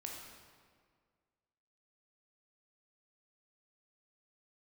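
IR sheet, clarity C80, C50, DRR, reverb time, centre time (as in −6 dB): 3.5 dB, 1.5 dB, −1.0 dB, 1.9 s, 74 ms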